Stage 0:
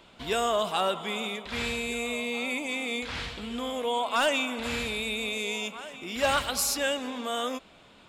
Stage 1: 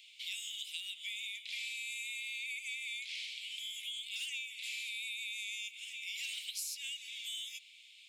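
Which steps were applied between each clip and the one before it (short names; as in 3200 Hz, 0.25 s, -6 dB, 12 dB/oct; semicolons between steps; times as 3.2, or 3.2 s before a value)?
Chebyshev high-pass 2200 Hz, order 6; compressor 5:1, threshold -42 dBFS, peak gain reduction 15.5 dB; gain +2.5 dB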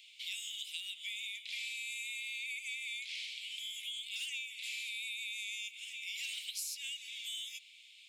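nothing audible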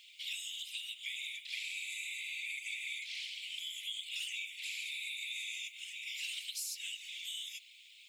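whisperiser; added noise violet -78 dBFS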